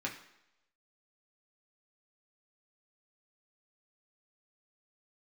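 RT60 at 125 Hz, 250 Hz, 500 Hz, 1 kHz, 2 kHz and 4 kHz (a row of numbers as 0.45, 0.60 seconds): 0.60, 0.75, 0.80, 0.85, 0.85, 0.80 seconds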